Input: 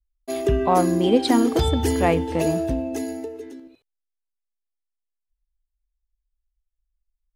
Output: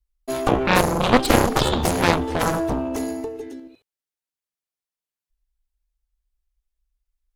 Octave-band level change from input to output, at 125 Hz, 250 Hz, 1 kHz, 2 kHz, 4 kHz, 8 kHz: +0.5 dB, -1.5 dB, +3.0 dB, +9.5 dB, +4.5 dB, +5.0 dB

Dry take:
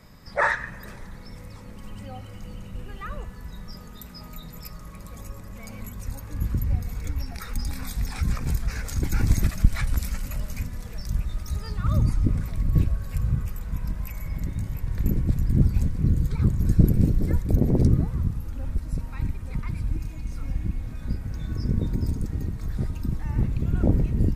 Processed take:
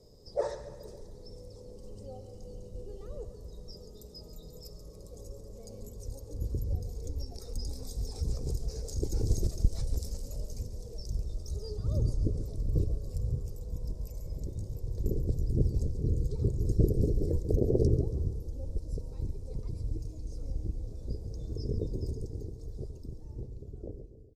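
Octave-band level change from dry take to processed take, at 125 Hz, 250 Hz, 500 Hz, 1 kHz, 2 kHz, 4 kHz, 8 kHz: -8.5 dB, -10.0 dB, +0.5 dB, under -15 dB, under -30 dB, -6.5 dB, -6.5 dB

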